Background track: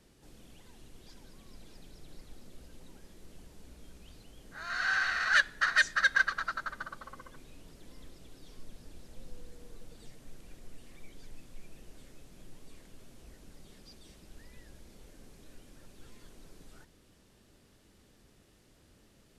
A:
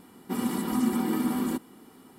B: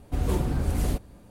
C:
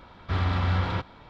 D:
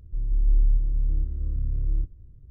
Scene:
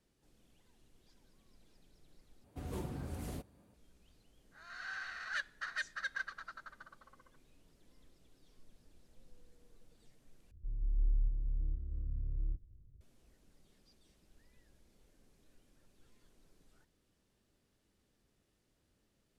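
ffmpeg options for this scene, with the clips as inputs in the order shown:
-filter_complex "[0:a]volume=-14dB[a];[2:a]highpass=81[b];[a]asplit=3[c][d][e];[c]atrim=end=2.444[f];[b]atrim=end=1.3,asetpts=PTS-STARTPTS,volume=-13.5dB[g];[d]atrim=start=3.736:end=10.514[h];[4:a]atrim=end=2.5,asetpts=PTS-STARTPTS,volume=-12dB[i];[e]atrim=start=13.006[j];[f][g]acrossfade=d=0.004:c1=hsin:c2=hsin[k];[k][h]acrossfade=d=0.004:c1=hsin:c2=hsin[l];[l][i]acrossfade=d=0.004:c1=hsin:c2=hsin[m];[m][j]acrossfade=d=0.004:c1=hsin:c2=hsin"

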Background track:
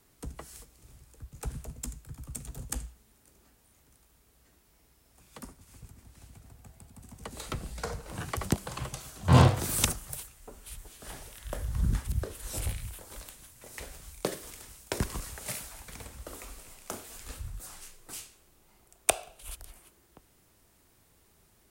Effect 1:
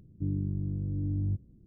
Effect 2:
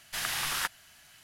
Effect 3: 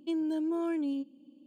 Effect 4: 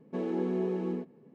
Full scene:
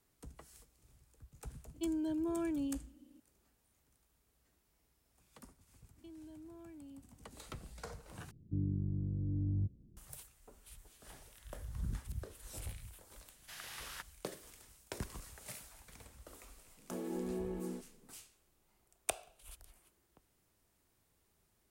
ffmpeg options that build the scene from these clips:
-filter_complex "[3:a]asplit=2[a][b];[0:a]volume=-11.5dB[c];[b]acompressor=threshold=-38dB:ratio=6:attack=3.2:release=140:knee=1:detection=peak[d];[4:a]bandreject=f=410:w=12[e];[c]asplit=2[f][g];[f]atrim=end=8.314[h];[1:a]atrim=end=1.66,asetpts=PTS-STARTPTS,volume=-4.5dB[i];[g]atrim=start=9.966[j];[a]atrim=end=1.46,asetpts=PTS-STARTPTS,volume=-5dB,afade=t=in:d=0.004:c=hsin,afade=t=out:st=1.456:d=0.004:c=hsin,adelay=1740[k];[d]atrim=end=1.46,asetpts=PTS-STARTPTS,volume=-13dB,afade=t=in:d=0.004:c=hsin,afade=t=out:st=1.456:d=0.004:c=hsin,adelay=5970[l];[2:a]atrim=end=1.23,asetpts=PTS-STARTPTS,volume=-16.5dB,afade=t=in:d=0.004:c=hsin,afade=t=out:st=1.226:d=0.004:c=hsin,adelay=13350[m];[e]atrim=end=1.34,asetpts=PTS-STARTPTS,volume=-8.5dB,afade=t=in:d=0.004:c=hsin,afade=t=out:st=1.336:d=0.004:c=hsin,adelay=16770[n];[h][i]acrossfade=d=0.004:c1=hsin:c2=hsin[o];[o][j]acrossfade=d=0.004:c1=hsin:c2=hsin[p];[p][k][l][m][n]amix=inputs=5:normalize=0"

